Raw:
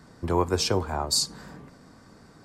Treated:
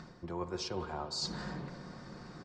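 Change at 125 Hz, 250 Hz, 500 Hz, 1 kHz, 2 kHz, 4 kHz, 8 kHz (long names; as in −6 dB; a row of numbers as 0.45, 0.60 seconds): −11.5, −9.5, −12.5, −11.5, −8.5, −11.5, −17.0 decibels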